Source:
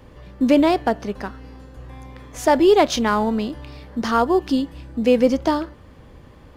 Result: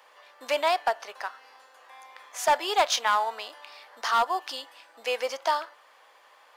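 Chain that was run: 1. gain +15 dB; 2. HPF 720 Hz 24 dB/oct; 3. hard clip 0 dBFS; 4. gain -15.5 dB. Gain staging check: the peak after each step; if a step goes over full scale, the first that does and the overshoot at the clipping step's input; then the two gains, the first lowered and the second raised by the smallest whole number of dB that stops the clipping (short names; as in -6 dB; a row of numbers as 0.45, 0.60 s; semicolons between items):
+9.5, +8.0, 0.0, -15.5 dBFS; step 1, 8.0 dB; step 1 +7 dB, step 4 -7.5 dB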